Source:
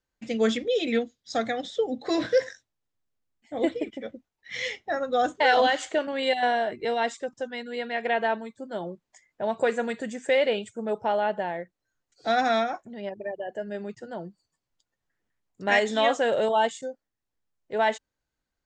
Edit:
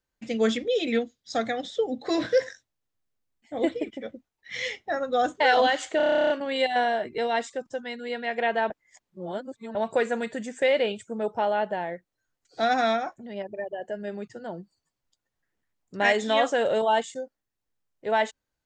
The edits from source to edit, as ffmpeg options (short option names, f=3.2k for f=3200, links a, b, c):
-filter_complex "[0:a]asplit=14[a][b][c][d][e][f][g][h][i][j][k][l][m][n];[a]atrim=end=6.002[o];[b]atrim=start=5.968:end=6.002[p];[c]atrim=start=5.968:end=6.002[q];[d]atrim=start=5.968:end=6.002[r];[e]atrim=start=5.968:end=6.002[s];[f]atrim=start=5.968:end=6.002[t];[g]atrim=start=5.968:end=6.002[u];[h]atrim=start=5.968:end=6.002[v];[i]atrim=start=5.968:end=6.002[w];[j]atrim=start=5.968:end=6.002[x];[k]atrim=start=5.968:end=6.002[y];[l]atrim=start=5.968:end=8.372[z];[m]atrim=start=8.368:end=9.422,asetpts=PTS-STARTPTS,areverse[aa];[n]atrim=start=9.418[ab];[o][p]acrossfade=d=0.004:c1=hsin:c2=hsin[ac];[ac][q]acrossfade=d=0.004:c1=hsin:c2=hsin[ad];[ad][r]acrossfade=d=0.004:c1=hsin:c2=hsin[ae];[ae][s]acrossfade=d=0.004:c1=hsin:c2=hsin[af];[af][t]acrossfade=d=0.004:c1=hsin:c2=hsin[ag];[ag][u]acrossfade=d=0.004:c1=hsin:c2=hsin[ah];[ah][v]acrossfade=d=0.004:c1=hsin:c2=hsin[ai];[ai][w]acrossfade=d=0.004:c1=hsin:c2=hsin[aj];[aj][x]acrossfade=d=0.004:c1=hsin:c2=hsin[ak];[ak][y]acrossfade=d=0.004:c1=hsin:c2=hsin[al];[al][z]acrossfade=d=0.004:c1=hsin:c2=hsin[am];[am][aa]acrossfade=d=0.004:c1=hsin:c2=hsin[an];[an][ab]acrossfade=d=0.004:c1=hsin:c2=hsin"